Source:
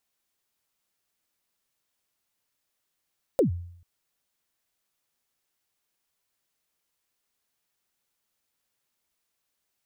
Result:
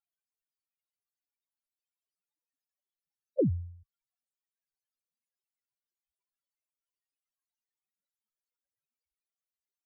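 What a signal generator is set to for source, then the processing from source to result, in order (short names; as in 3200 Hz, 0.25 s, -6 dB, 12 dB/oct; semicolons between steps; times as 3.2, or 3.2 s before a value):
kick drum length 0.44 s, from 600 Hz, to 87 Hz, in 0.116 s, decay 0.67 s, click on, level -15 dB
loudest bins only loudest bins 4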